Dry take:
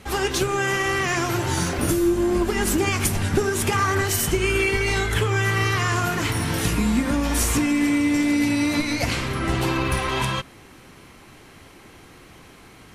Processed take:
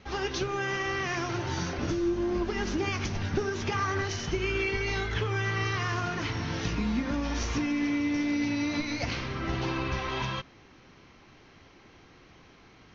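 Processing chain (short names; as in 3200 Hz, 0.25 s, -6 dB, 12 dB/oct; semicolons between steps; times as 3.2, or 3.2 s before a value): steep low-pass 6300 Hz 96 dB/oct; gain -8 dB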